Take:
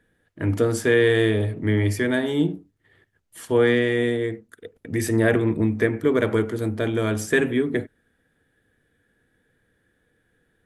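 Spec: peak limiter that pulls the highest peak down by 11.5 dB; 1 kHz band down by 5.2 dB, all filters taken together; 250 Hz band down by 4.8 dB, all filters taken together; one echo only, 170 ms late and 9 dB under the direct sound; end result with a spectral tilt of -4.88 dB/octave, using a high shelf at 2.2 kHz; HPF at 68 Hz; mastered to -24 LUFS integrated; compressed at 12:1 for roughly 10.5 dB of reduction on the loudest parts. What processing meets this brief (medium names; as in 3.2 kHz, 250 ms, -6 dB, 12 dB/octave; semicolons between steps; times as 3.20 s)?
high-pass 68 Hz; peaking EQ 250 Hz -6 dB; peaking EQ 1 kHz -8.5 dB; treble shelf 2.2 kHz +4 dB; compression 12:1, threshold -27 dBFS; peak limiter -27.5 dBFS; delay 170 ms -9 dB; trim +12.5 dB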